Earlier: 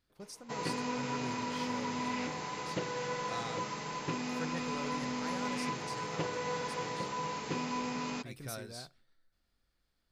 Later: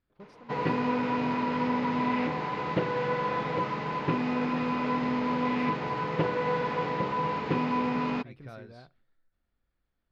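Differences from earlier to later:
background +9.5 dB; master: add distance through air 370 m

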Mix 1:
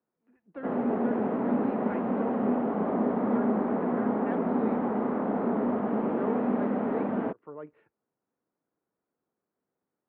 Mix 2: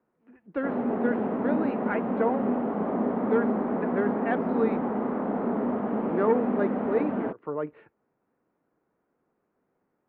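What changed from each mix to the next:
speech +11.0 dB; master: remove high-pass 46 Hz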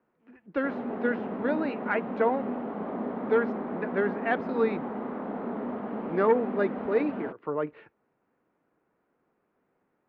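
background -7.0 dB; master: remove tape spacing loss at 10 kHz 23 dB

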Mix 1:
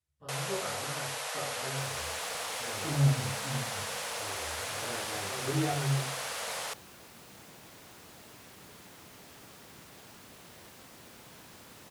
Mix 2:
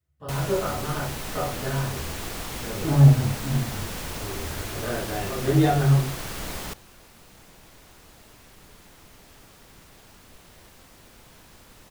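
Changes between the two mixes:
speech +11.5 dB; first sound: remove brick-wall FIR band-pass 430–12000 Hz; second sound: remove high-pass 110 Hz 12 dB/octave

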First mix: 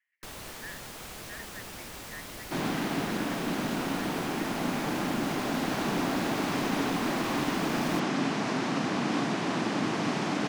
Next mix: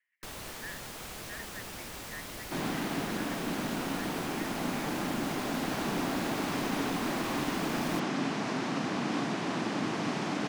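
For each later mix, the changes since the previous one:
second sound -3.0 dB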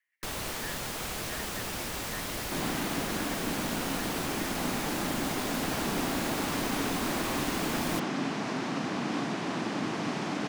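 first sound +7.0 dB

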